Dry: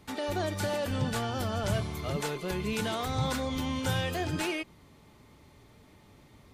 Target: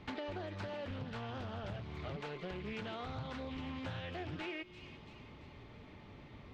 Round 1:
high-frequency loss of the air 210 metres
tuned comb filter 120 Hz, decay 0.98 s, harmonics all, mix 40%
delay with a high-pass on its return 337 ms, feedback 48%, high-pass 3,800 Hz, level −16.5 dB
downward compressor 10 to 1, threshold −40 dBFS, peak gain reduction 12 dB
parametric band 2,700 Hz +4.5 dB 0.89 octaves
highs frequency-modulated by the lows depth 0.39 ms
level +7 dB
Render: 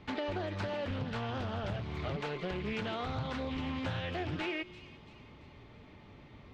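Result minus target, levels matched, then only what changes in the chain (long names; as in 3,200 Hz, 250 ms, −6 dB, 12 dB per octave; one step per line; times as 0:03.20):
downward compressor: peak gain reduction −6.5 dB
change: downward compressor 10 to 1, threshold −47 dBFS, peak gain reduction 18.5 dB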